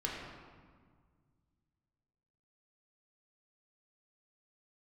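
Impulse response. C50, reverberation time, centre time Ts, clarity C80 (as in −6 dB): 1.0 dB, 1.7 s, 84 ms, 2.5 dB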